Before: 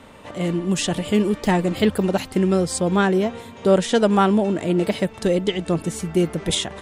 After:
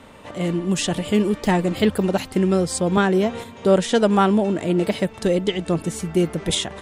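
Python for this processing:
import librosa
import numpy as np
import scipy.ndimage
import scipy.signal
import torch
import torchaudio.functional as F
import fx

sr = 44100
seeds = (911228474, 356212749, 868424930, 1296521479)

y = fx.band_squash(x, sr, depth_pct=70, at=(2.97, 3.44))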